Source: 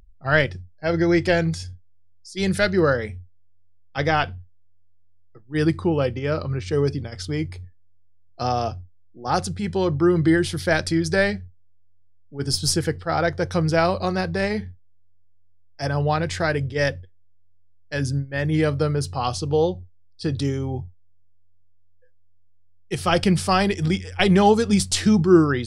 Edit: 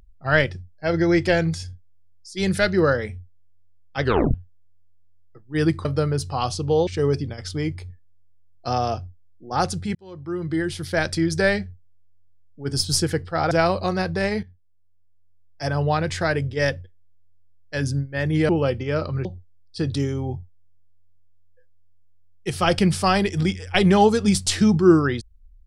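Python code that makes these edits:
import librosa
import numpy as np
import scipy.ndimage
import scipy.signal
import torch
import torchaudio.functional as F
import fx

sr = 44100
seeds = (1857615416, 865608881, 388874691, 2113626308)

y = fx.edit(x, sr, fx.tape_stop(start_s=4.02, length_s=0.32),
    fx.swap(start_s=5.85, length_s=0.76, other_s=18.68, other_length_s=1.02),
    fx.fade_in_span(start_s=9.69, length_s=1.32),
    fx.cut(start_s=13.25, length_s=0.45),
    fx.fade_in_from(start_s=14.62, length_s=1.2, floor_db=-12.5), tone=tone)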